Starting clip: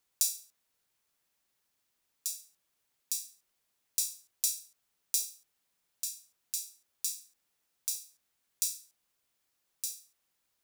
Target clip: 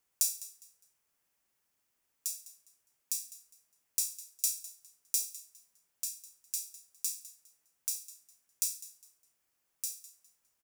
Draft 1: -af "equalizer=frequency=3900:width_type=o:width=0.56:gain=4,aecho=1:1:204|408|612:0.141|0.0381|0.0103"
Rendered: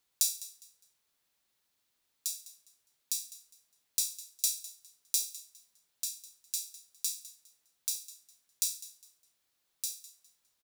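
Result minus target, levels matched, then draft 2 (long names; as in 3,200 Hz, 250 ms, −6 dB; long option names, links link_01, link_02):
4,000 Hz band +3.5 dB
-af "equalizer=frequency=3900:width_type=o:width=0.56:gain=-6.5,aecho=1:1:204|408|612:0.141|0.0381|0.0103"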